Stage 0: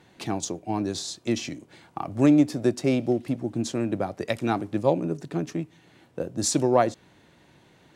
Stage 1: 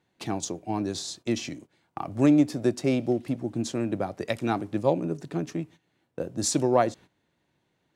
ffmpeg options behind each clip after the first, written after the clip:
ffmpeg -i in.wav -af "agate=range=-15dB:threshold=-44dB:ratio=16:detection=peak,volume=-1.5dB" out.wav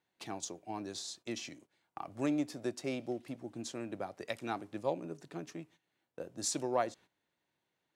ffmpeg -i in.wav -af "lowshelf=frequency=340:gain=-10.5,volume=-7.5dB" out.wav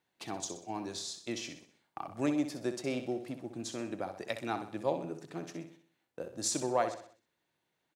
ffmpeg -i in.wav -af "aecho=1:1:63|126|189|252|315:0.335|0.151|0.0678|0.0305|0.0137,volume=2dB" out.wav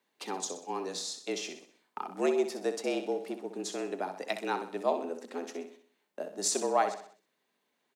ffmpeg -i in.wav -af "afreqshift=86,volume=3dB" out.wav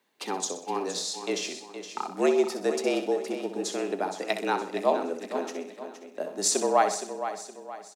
ffmpeg -i in.wav -af "aecho=1:1:467|934|1401|1868:0.299|0.119|0.0478|0.0191,volume=5dB" out.wav

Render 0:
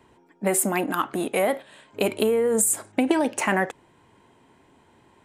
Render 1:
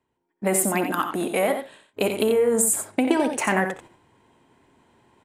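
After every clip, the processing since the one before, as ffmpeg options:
ffmpeg -i in.wav -af "agate=range=-21dB:threshold=-47dB:ratio=16:detection=peak,areverse,acompressor=mode=upward:threshold=-44dB:ratio=2.5,areverse,aecho=1:1:63|89:0.237|0.398" out.wav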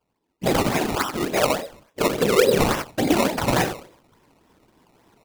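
ffmpeg -i in.wav -af "bandreject=frequency=179.9:width_type=h:width=4,bandreject=frequency=359.8:width_type=h:width=4,bandreject=frequency=539.7:width_type=h:width=4,bandreject=frequency=719.6:width_type=h:width=4,bandreject=frequency=899.5:width_type=h:width=4,bandreject=frequency=1079.4:width_type=h:width=4,bandreject=frequency=1259.3:width_type=h:width=4,bandreject=frequency=1439.2:width_type=h:width=4,afftfilt=real='hypot(re,im)*cos(2*PI*random(0))':imag='hypot(re,im)*sin(2*PI*random(1))':win_size=512:overlap=0.75,acrusher=samples=19:mix=1:aa=0.000001:lfo=1:lforange=19:lforate=3.5,volume=7.5dB" out.wav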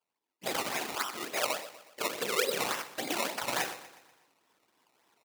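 ffmpeg -i in.wav -af "highpass=frequency=1300:poles=1,aecho=1:1:122|244|366|488|610:0.158|0.0824|0.0429|0.0223|0.0116,volume=-6dB" out.wav

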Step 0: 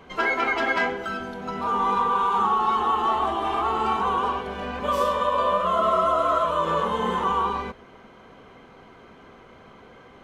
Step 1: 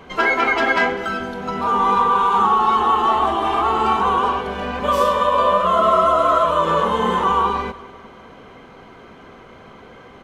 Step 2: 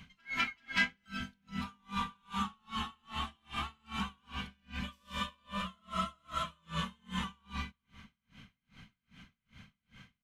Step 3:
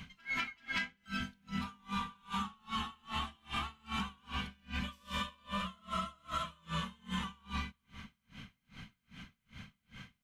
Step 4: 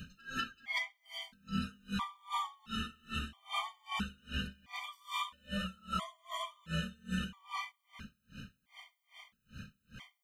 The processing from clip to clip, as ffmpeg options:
ffmpeg -i in.wav -af "aecho=1:1:199|398|597|796:0.1|0.053|0.0281|0.0149,volume=6dB" out.wav
ffmpeg -i in.wav -af "firequalizer=gain_entry='entry(200,0);entry(370,-27);entry(1600,-7);entry(2400,0)':delay=0.05:min_phase=1,aeval=exprs='val(0)*pow(10,-38*(0.5-0.5*cos(2*PI*2.5*n/s))/20)':channel_layout=same,volume=-3.5dB" out.wav
ffmpeg -i in.wav -af "acompressor=threshold=-38dB:ratio=12,volume=5dB" out.wav
ffmpeg -i in.wav -af "highshelf=frequency=11000:gain=7.5,afftfilt=real='re*gt(sin(2*PI*0.75*pts/sr)*(1-2*mod(floor(b*sr/1024/610),2)),0)':imag='im*gt(sin(2*PI*0.75*pts/sr)*(1-2*mod(floor(b*sr/1024/610),2)),0)':win_size=1024:overlap=0.75,volume=3dB" out.wav

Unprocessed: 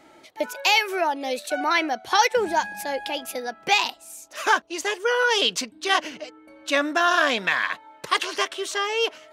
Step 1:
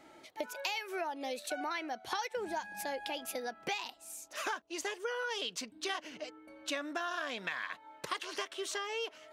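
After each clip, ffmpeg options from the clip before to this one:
ffmpeg -i in.wav -af "acompressor=threshold=-29dB:ratio=6,volume=-5.5dB" out.wav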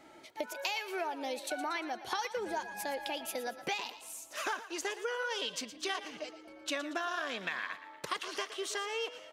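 ffmpeg -i in.wav -filter_complex "[0:a]asplit=6[link_01][link_02][link_03][link_04][link_05][link_06];[link_02]adelay=116,afreqshift=33,volume=-13.5dB[link_07];[link_03]adelay=232,afreqshift=66,volume=-19.9dB[link_08];[link_04]adelay=348,afreqshift=99,volume=-26.3dB[link_09];[link_05]adelay=464,afreqshift=132,volume=-32.6dB[link_10];[link_06]adelay=580,afreqshift=165,volume=-39dB[link_11];[link_01][link_07][link_08][link_09][link_10][link_11]amix=inputs=6:normalize=0,volume=1dB" out.wav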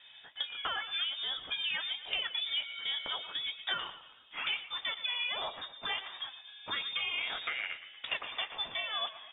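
ffmpeg -i in.wav -af "flanger=delay=9:depth=8.7:regen=-42:speed=1.2:shape=sinusoidal,lowpass=frequency=3300:width_type=q:width=0.5098,lowpass=frequency=3300:width_type=q:width=0.6013,lowpass=frequency=3300:width_type=q:width=0.9,lowpass=frequency=3300:width_type=q:width=2.563,afreqshift=-3900,volume=5dB" out.wav

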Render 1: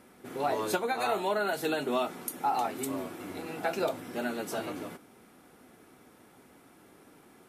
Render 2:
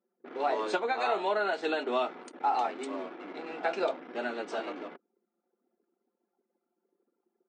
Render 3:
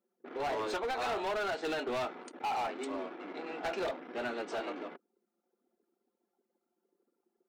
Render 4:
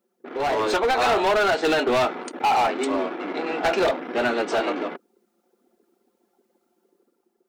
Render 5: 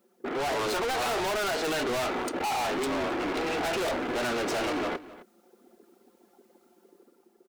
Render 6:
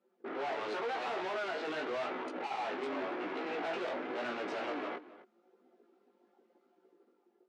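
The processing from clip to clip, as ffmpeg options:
ffmpeg -i in.wav -filter_complex "[0:a]acrossover=split=270 5000:gain=0.0891 1 0.158[link_01][link_02][link_03];[link_01][link_02][link_03]amix=inputs=3:normalize=0,anlmdn=0.0251,afftfilt=real='re*between(b*sr/4096,160,8900)':imag='im*between(b*sr/4096,160,8900)':win_size=4096:overlap=0.75,volume=1dB" out.wav
ffmpeg -i in.wav -af "asoftclip=type=hard:threshold=-30dB,volume=-1dB" out.wav
ffmpeg -i in.wav -af "dynaudnorm=framelen=170:gausssize=7:maxgain=5dB,volume=9dB" out.wav
ffmpeg -i in.wav -filter_complex "[0:a]asplit=2[link_01][link_02];[link_02]alimiter=level_in=3.5dB:limit=-24dB:level=0:latency=1:release=155,volume=-3.5dB,volume=-3dB[link_03];[link_01][link_03]amix=inputs=2:normalize=0,asoftclip=type=hard:threshold=-30.5dB,asplit=2[link_04][link_05];[link_05]adelay=262.4,volume=-17dB,highshelf=frequency=4000:gain=-5.9[link_06];[link_04][link_06]amix=inputs=2:normalize=0,volume=2.5dB" out.wav
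ffmpeg -i in.wav -af "flanger=delay=15.5:depth=4.4:speed=0.89,highpass=250,lowpass=3000,volume=-4.5dB" out.wav

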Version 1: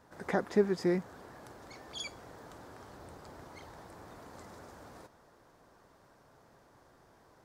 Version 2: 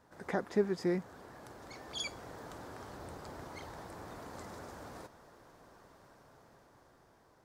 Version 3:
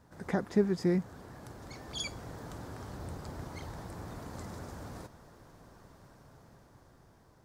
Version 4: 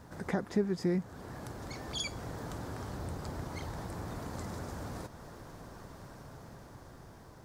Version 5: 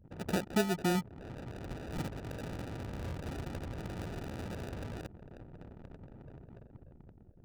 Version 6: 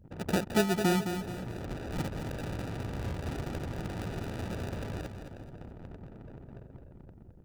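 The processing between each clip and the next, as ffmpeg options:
ffmpeg -i in.wav -af "dynaudnorm=framelen=480:gausssize=7:maxgain=7dB,volume=-3.5dB" out.wav
ffmpeg -i in.wav -af "bass=frequency=250:gain=10,treble=frequency=4000:gain=3" out.wav
ffmpeg -i in.wav -af "acompressor=threshold=-57dB:ratio=1.5,volume=9dB" out.wav
ffmpeg -i in.wav -af "acrusher=samples=41:mix=1:aa=0.000001,anlmdn=0.0158" out.wav
ffmpeg -i in.wav -af "aecho=1:1:214|428|642|856:0.398|0.155|0.0606|0.0236,volume=3.5dB" out.wav

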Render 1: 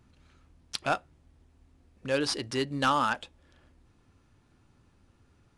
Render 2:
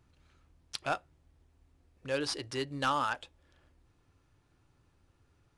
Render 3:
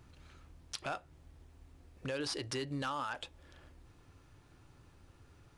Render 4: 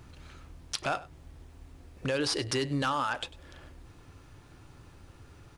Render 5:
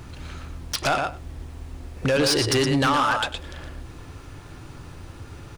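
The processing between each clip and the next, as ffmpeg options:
ffmpeg -i in.wav -af "equalizer=frequency=220:width=4.8:gain=-11.5,volume=-4.5dB" out.wav
ffmpeg -i in.wav -af "alimiter=level_in=6dB:limit=-24dB:level=0:latency=1:release=27,volume=-6dB,acompressor=threshold=-48dB:ratio=2,volume=8dB" out.wav
ffmpeg -i in.wav -af "aecho=1:1:98:0.112,volume=8dB" out.wav
ffmpeg -i in.wav -filter_complex "[0:a]asplit=2[link_01][link_02];[link_02]adelay=116.6,volume=-6dB,highshelf=frequency=4000:gain=-2.62[link_03];[link_01][link_03]amix=inputs=2:normalize=0,aeval=exprs='0.168*sin(PI/2*2.24*val(0)/0.168)':channel_layout=same" out.wav

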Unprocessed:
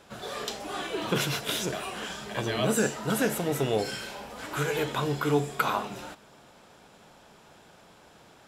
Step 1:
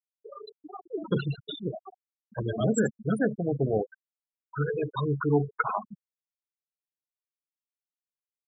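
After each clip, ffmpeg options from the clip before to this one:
ffmpeg -i in.wav -af "afftfilt=real='re*gte(hypot(re,im),0.112)':imag='im*gte(hypot(re,im),0.112)':win_size=1024:overlap=0.75,bass=frequency=250:gain=4,treble=frequency=4000:gain=4" out.wav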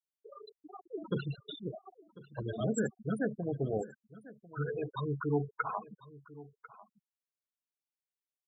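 ffmpeg -i in.wav -af "aecho=1:1:1046:0.112,volume=-7dB" out.wav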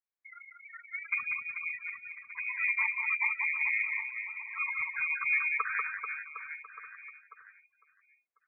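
ffmpeg -i in.wav -af "aecho=1:1:190|437|758.1|1176|1718:0.631|0.398|0.251|0.158|0.1,lowpass=frequency=2200:width_type=q:width=0.5098,lowpass=frequency=2200:width_type=q:width=0.6013,lowpass=frequency=2200:width_type=q:width=0.9,lowpass=frequency=2200:width_type=q:width=2.563,afreqshift=-2600,volume=1dB" out.wav

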